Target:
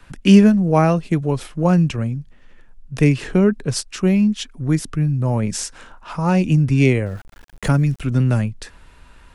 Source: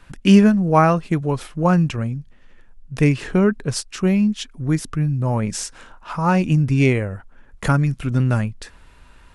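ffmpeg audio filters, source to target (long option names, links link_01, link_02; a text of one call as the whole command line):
ffmpeg -i in.wav -filter_complex "[0:a]acrossover=split=180|880|1700[link_01][link_02][link_03][link_04];[link_03]acompressor=threshold=-44dB:ratio=6[link_05];[link_01][link_02][link_05][link_04]amix=inputs=4:normalize=0,asettb=1/sr,asplit=3[link_06][link_07][link_08];[link_06]atrim=end=7.064[link_09];[link_07]atrim=start=7.06:end=8,asetpts=PTS-STARTPTS,afade=type=in:duration=0.004:curve=qsin,afade=type=out:start_time=0.936:duration=0.004:curve=qsin,aeval=exprs='val(0)*gte(abs(val(0)),0.0075)':channel_layout=same[link_10];[link_08]atrim=start=7.996[link_11];[link_09][link_10]acrossfade=duration=0.004:curve1=hsin:curve2=qsin[link_12];[link_12][link_11]acrossfade=duration=0.004:curve1=qsin:curve2=hsin,volume=1.5dB" out.wav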